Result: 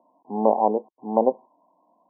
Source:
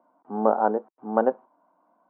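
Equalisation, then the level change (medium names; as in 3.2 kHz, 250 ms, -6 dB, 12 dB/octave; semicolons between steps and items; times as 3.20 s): brick-wall FIR low-pass 1.1 kHz; +2.0 dB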